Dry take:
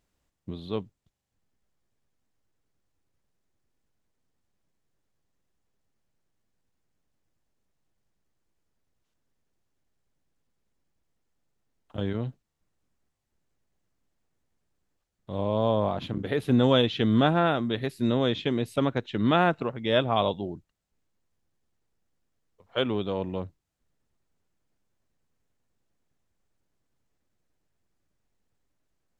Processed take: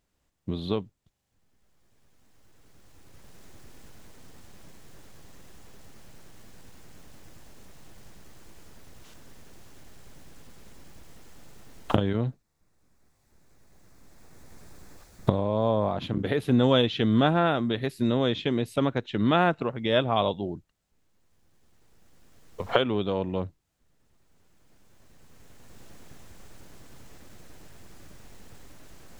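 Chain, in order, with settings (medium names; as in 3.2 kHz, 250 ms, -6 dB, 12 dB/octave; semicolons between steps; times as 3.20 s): recorder AGC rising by 11 dB/s; 12.21–15.96 s: peaking EQ 3 kHz -8.5 dB 0.32 oct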